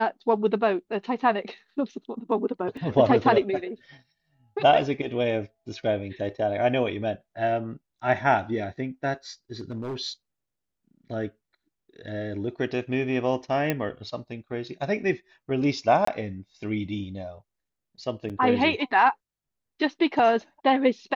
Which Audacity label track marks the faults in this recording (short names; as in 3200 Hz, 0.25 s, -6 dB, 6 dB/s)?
2.770000	2.770000	gap 3.1 ms
9.600000	9.970000	clipped -28 dBFS
13.700000	13.700000	pop -11 dBFS
16.050000	16.070000	gap 24 ms
18.290000	18.300000	gap 7.4 ms